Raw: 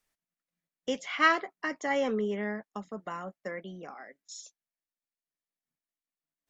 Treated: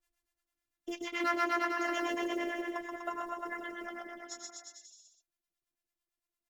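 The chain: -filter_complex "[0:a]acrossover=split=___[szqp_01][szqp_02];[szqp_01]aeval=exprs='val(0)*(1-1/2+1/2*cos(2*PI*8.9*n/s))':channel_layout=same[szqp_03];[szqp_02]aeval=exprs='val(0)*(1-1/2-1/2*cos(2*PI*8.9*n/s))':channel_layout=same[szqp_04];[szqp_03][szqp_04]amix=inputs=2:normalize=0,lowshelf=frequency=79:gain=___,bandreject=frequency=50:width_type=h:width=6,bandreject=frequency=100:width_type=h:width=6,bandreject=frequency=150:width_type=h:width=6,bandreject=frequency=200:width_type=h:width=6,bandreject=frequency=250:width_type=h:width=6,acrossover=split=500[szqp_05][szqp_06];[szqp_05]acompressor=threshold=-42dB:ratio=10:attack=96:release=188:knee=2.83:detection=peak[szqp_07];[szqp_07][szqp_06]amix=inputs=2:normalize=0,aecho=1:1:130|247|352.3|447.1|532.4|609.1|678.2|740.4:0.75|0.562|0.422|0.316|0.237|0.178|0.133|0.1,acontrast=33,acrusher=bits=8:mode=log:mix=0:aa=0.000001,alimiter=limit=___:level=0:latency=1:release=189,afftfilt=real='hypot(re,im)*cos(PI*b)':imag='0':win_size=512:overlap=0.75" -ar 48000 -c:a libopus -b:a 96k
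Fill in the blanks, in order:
500, 8, -16dB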